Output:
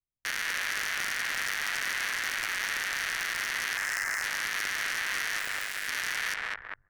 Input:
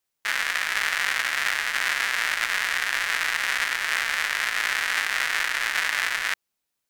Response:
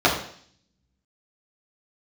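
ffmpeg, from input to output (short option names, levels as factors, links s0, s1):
-filter_complex "[0:a]asettb=1/sr,asplit=3[s0][s1][s2];[s0]atrim=end=3.774[s3];[s1]atrim=start=3.77:end=4.23,asetpts=PTS-STARTPTS,afade=t=in:d=0.004:c=qsin,afade=t=out:st=0.456:d=0.004:c=qsin,asuperstop=centerf=3500:order=12:qfactor=1[s4];[s2]atrim=start=4.226[s5];[s3][s4]acrossfade=d=0.004:c1=hsin:c2=qsin[s6];[s6][s5]acrossfade=d=0.004:c1=qsin:c2=hsin,asettb=1/sr,asplit=3[s7][s8][s9];[s7]atrim=end=5.394[s10];[s8]atrim=start=5.39:end=5.88,asetpts=PTS-STARTPTS,afade=t=in:d=0.004:c=qsin,afade=t=out:st=0.486:d=0.004:c=qsin,aderivative[s11];[s9]atrim=start=5.876[s12];[s10][s11]acrossfade=d=0.004:c1=hsin:c2=qsin[s13];[s13][s12]acrossfade=d=0.004:c1=qsin:c2=hsin,asplit=2[s14][s15];[s15]adelay=200,lowpass=f=1500:p=1,volume=0.531,asplit=2[s16][s17];[s17]adelay=200,lowpass=f=1500:p=1,volume=0.43,asplit=2[s18][s19];[s19]adelay=200,lowpass=f=1500:p=1,volume=0.43,asplit=2[s20][s21];[s21]adelay=200,lowpass=f=1500:p=1,volume=0.43,asplit=2[s22][s23];[s23]adelay=200,lowpass=f=1500:p=1,volume=0.43[s24];[s14][s16][s18][s20][s22][s24]amix=inputs=6:normalize=0,anlmdn=0.1,tremolo=f=100:d=0.824,acrossover=split=620|1400[s25][s26][s27];[s25]acompressor=threshold=0.00224:ratio=4[s28];[s26]acompressor=threshold=0.00891:ratio=4[s29];[s27]acompressor=threshold=0.0447:ratio=4[s30];[s28][s29][s30]amix=inputs=3:normalize=0,aeval=exprs='0.237*sin(PI/2*3.98*val(0)/0.237)':c=same,alimiter=limit=0.0631:level=0:latency=1:release=15"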